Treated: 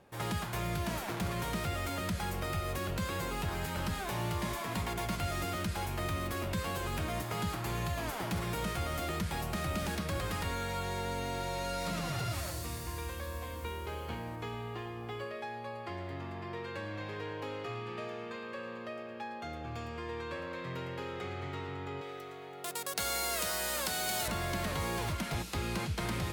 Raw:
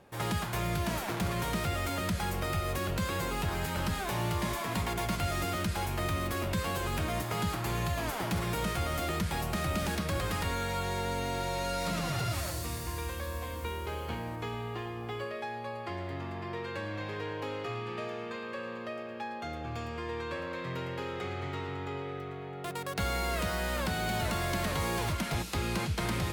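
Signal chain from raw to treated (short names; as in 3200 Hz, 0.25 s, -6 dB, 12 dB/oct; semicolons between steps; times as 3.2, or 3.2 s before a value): 22.01–24.28 tone controls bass -12 dB, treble +12 dB; gain -3 dB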